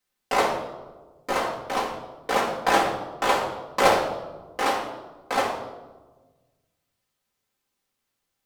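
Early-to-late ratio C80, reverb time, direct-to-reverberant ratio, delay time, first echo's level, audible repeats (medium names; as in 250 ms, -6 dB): 8.0 dB, 1.3 s, -5.5 dB, no echo, no echo, no echo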